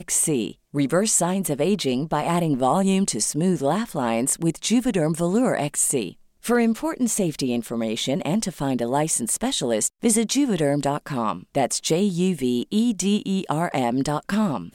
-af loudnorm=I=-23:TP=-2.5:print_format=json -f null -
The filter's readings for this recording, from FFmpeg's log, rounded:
"input_i" : "-22.5",
"input_tp" : "-7.6",
"input_lra" : "1.8",
"input_thresh" : "-32.6",